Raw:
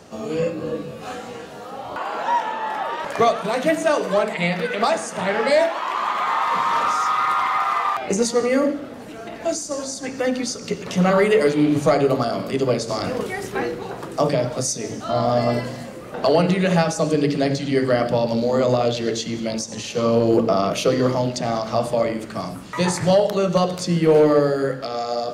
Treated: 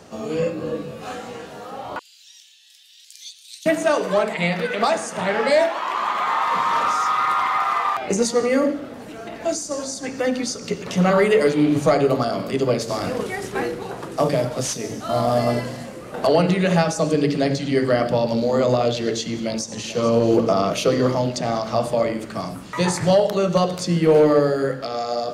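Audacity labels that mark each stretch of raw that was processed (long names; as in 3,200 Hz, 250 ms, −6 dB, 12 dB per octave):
1.990000	3.660000	inverse Chebyshev high-pass filter stop band from 1,200 Hz, stop band 60 dB
12.800000	16.270000	variable-slope delta modulation 64 kbit/s
19.400000	20.180000	delay throw 440 ms, feedback 50%, level −13.5 dB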